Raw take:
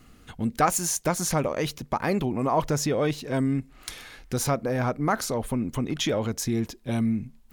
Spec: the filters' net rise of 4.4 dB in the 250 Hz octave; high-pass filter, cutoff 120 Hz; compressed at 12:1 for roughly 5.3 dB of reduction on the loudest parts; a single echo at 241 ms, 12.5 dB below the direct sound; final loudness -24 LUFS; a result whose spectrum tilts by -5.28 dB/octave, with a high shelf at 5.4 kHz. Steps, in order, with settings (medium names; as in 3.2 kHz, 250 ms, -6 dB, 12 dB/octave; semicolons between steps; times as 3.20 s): high-pass 120 Hz; peaking EQ 250 Hz +5.5 dB; treble shelf 5.4 kHz -7 dB; compression 12:1, threshold -22 dBFS; delay 241 ms -12.5 dB; trim +4.5 dB